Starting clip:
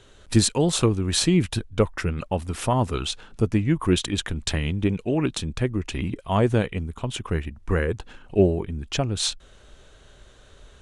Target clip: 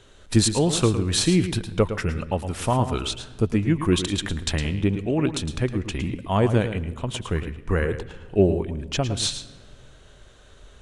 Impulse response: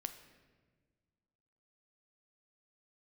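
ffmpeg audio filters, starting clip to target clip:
-filter_complex "[0:a]asplit=2[a][b];[1:a]atrim=start_sample=2205,adelay=110[c];[b][c]afir=irnorm=-1:irlink=0,volume=-7.5dB[d];[a][d]amix=inputs=2:normalize=0"

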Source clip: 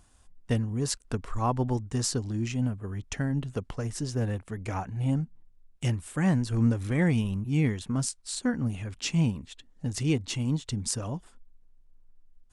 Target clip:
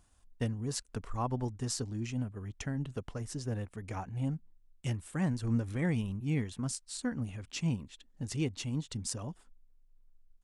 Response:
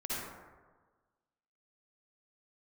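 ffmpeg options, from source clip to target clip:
-af "atempo=1.2,volume=-6.5dB"

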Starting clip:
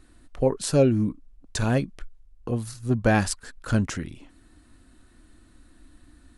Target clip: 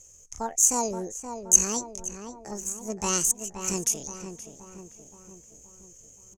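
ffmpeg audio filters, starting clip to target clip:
-filter_complex "[0:a]aexciter=amount=11.1:drive=7.1:freq=3.6k,asetrate=76340,aresample=44100,atempo=0.577676,lowpass=f=6.4k:t=q:w=11,asplit=2[a][b];[b]adelay=524,lowpass=f=2k:p=1,volume=-8dB,asplit=2[c][d];[d]adelay=524,lowpass=f=2k:p=1,volume=0.55,asplit=2[e][f];[f]adelay=524,lowpass=f=2k:p=1,volume=0.55,asplit=2[g][h];[h]adelay=524,lowpass=f=2k:p=1,volume=0.55,asplit=2[i][j];[j]adelay=524,lowpass=f=2k:p=1,volume=0.55,asplit=2[k][l];[l]adelay=524,lowpass=f=2k:p=1,volume=0.55,asplit=2[m][n];[n]adelay=524,lowpass=f=2k:p=1,volume=0.55[o];[c][e][g][i][k][m][o]amix=inputs=7:normalize=0[p];[a][p]amix=inputs=2:normalize=0,volume=-10.5dB"

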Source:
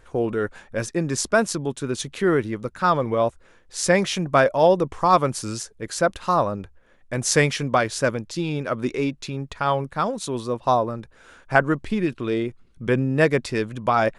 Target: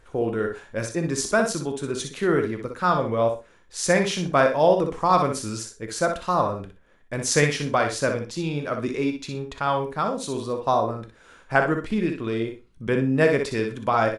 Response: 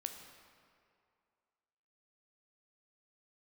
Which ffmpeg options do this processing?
-filter_complex "[0:a]aecho=1:1:61|122|183:0.447|0.0804|0.0145[a];[1:a]atrim=start_sample=2205,atrim=end_sample=3087,asetrate=41013,aresample=44100[b];[a][b]afir=irnorm=-1:irlink=0"

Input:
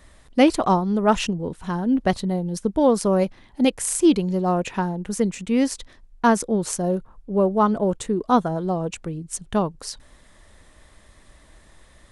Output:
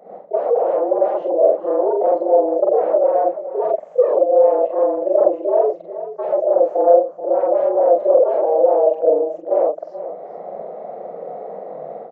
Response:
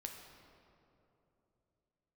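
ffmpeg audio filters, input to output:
-af "afftfilt=real='re':imag='-im':win_size=4096:overlap=0.75,aresample=16000,aeval=exprs='0.398*sin(PI/2*7.08*val(0)/0.398)':c=same,aresample=44100,afreqshift=150,dynaudnorm=f=110:g=3:m=16dB,asuperpass=centerf=570:order=4:qfactor=2.8,aecho=1:1:431:0.237,volume=2.5dB"

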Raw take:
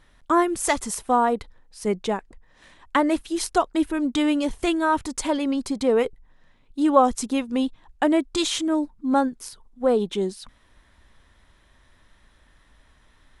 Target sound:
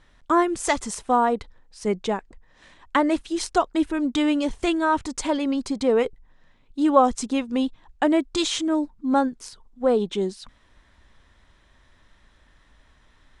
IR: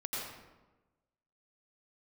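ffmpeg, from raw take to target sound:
-af "lowpass=f=8.6k:w=0.5412,lowpass=f=8.6k:w=1.3066"

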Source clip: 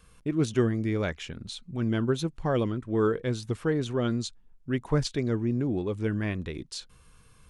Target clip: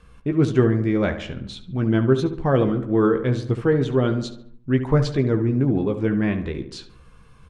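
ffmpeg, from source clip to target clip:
-filter_complex "[0:a]aemphasis=mode=reproduction:type=75fm,asplit=2[a][b];[b]adelay=15,volume=-8dB[c];[a][c]amix=inputs=2:normalize=0,asplit=2[d][e];[e]adelay=71,lowpass=f=2.4k:p=1,volume=-10dB,asplit=2[f][g];[g]adelay=71,lowpass=f=2.4k:p=1,volume=0.55,asplit=2[h][i];[i]adelay=71,lowpass=f=2.4k:p=1,volume=0.55,asplit=2[j][k];[k]adelay=71,lowpass=f=2.4k:p=1,volume=0.55,asplit=2[l][m];[m]adelay=71,lowpass=f=2.4k:p=1,volume=0.55,asplit=2[n][o];[o]adelay=71,lowpass=f=2.4k:p=1,volume=0.55[p];[f][h][j][l][n][p]amix=inputs=6:normalize=0[q];[d][q]amix=inputs=2:normalize=0,volume=6dB"

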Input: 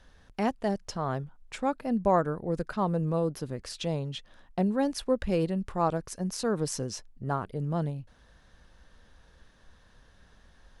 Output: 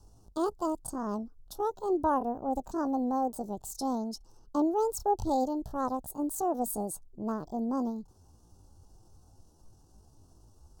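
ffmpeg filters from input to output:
-af "adynamicequalizer=threshold=0.00631:dfrequency=190:dqfactor=3.9:tfrequency=190:tqfactor=3.9:attack=5:release=100:ratio=0.375:range=2.5:mode=cutabove:tftype=bell,asetrate=70004,aresample=44100,atempo=0.629961,asuperstop=centerf=2200:order=4:qfactor=0.54"

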